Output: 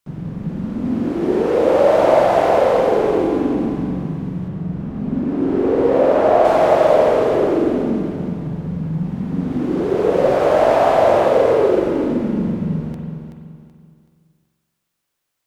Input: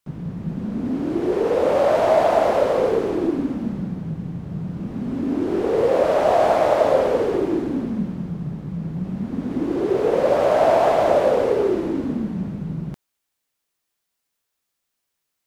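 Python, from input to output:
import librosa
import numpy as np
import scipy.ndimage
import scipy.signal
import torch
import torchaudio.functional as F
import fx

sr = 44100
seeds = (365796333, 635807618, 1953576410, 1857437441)

y = fx.high_shelf(x, sr, hz=3400.0, db=-9.5, at=(4.48, 6.45))
y = fx.echo_feedback(y, sr, ms=378, feedback_pct=33, wet_db=-8.0)
y = fx.rev_spring(y, sr, rt60_s=1.3, pass_ms=(44,), chirp_ms=70, drr_db=1.5)
y = y * 10.0 ** (1.0 / 20.0)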